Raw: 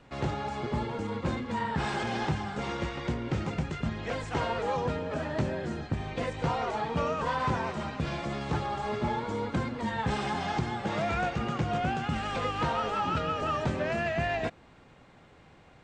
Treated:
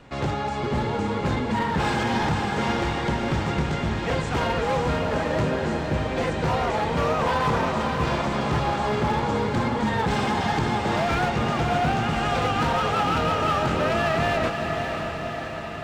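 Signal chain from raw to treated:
hard clipping −27.5 dBFS, distortion −13 dB
feedback delay with all-pass diffusion 564 ms, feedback 65%, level −5 dB
level +7 dB

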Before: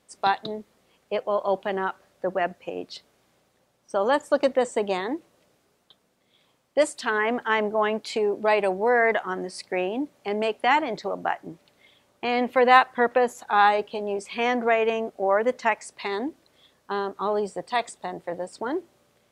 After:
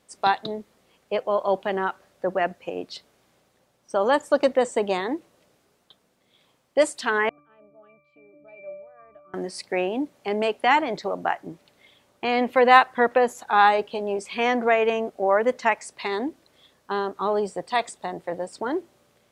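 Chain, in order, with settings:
0:07.29–0:09.34: resonances in every octave D, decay 0.77 s
level +1.5 dB

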